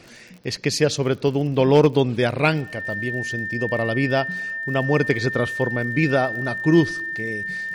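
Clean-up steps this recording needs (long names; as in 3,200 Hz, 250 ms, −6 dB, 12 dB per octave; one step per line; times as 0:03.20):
clipped peaks rebuilt −6.5 dBFS
click removal
notch filter 1,800 Hz, Q 30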